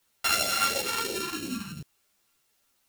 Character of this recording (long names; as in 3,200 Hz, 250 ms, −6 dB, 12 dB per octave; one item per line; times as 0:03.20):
a buzz of ramps at a fixed pitch in blocks of 32 samples
phaser sweep stages 2, 2.9 Hz, lowest notch 520–1,100 Hz
a quantiser's noise floor 12 bits, dither triangular
a shimmering, thickened sound